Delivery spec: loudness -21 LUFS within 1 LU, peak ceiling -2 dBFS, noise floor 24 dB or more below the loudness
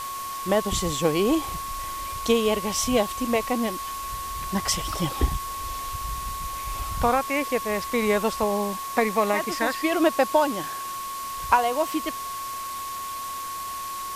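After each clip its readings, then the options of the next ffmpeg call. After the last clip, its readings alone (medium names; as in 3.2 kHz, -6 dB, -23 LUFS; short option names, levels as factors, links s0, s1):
steady tone 1.1 kHz; tone level -31 dBFS; noise floor -33 dBFS; noise floor target -50 dBFS; loudness -26.0 LUFS; peak level -5.0 dBFS; loudness target -21.0 LUFS
-> -af "bandreject=f=1100:w=30"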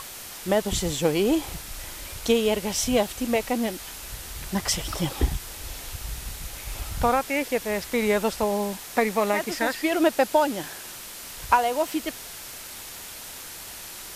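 steady tone not found; noise floor -40 dBFS; noise floor target -50 dBFS
-> -af "afftdn=nr=10:nf=-40"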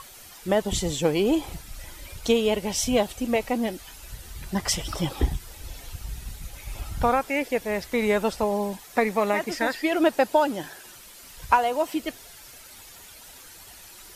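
noise floor -47 dBFS; noise floor target -49 dBFS
-> -af "afftdn=nr=6:nf=-47"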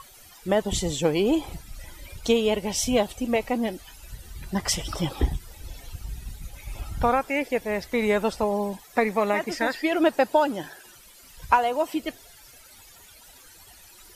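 noise floor -51 dBFS; loudness -25.0 LUFS; peak level -5.0 dBFS; loudness target -21.0 LUFS
-> -af "volume=1.58,alimiter=limit=0.794:level=0:latency=1"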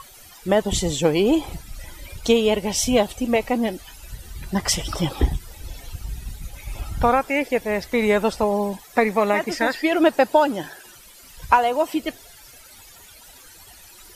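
loudness -21.0 LUFS; peak level -2.0 dBFS; noise floor -47 dBFS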